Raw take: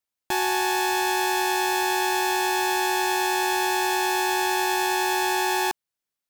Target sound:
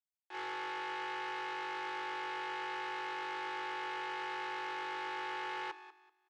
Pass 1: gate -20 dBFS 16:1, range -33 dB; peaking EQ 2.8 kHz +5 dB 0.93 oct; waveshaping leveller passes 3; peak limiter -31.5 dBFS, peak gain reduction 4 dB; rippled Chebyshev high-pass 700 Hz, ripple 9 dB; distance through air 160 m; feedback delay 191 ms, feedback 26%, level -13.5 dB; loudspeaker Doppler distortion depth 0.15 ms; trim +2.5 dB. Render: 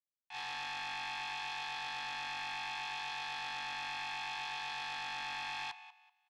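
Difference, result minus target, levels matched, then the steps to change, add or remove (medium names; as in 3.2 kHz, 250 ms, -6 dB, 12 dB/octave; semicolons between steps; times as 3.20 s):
500 Hz band -14.0 dB
change: rippled Chebyshev high-pass 310 Hz, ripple 9 dB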